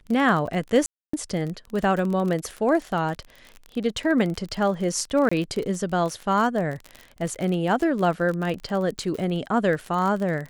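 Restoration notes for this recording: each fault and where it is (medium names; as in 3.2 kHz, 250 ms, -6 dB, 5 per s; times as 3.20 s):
crackle 36 per s -27 dBFS
0.86–1.13 s: dropout 274 ms
5.29–5.32 s: dropout 25 ms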